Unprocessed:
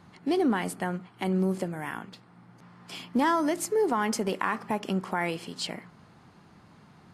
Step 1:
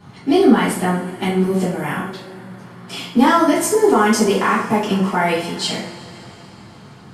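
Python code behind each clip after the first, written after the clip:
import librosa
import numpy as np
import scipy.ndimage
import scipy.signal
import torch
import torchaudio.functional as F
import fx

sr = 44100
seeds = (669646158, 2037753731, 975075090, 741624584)

y = fx.rev_double_slope(x, sr, seeds[0], early_s=0.47, late_s=4.1, knee_db=-22, drr_db=-10.0)
y = y * librosa.db_to_amplitude(1.5)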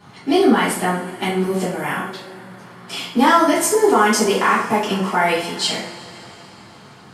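y = fx.low_shelf(x, sr, hz=280.0, db=-9.5)
y = y * librosa.db_to_amplitude(2.0)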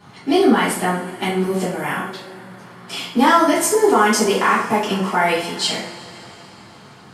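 y = x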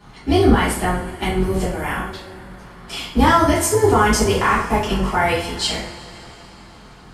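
y = fx.octave_divider(x, sr, octaves=2, level_db=0.0)
y = y * librosa.db_to_amplitude(-1.0)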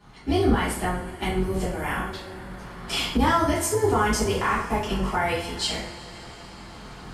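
y = fx.recorder_agc(x, sr, target_db=-8.0, rise_db_per_s=5.9, max_gain_db=30)
y = y * librosa.db_to_amplitude(-7.0)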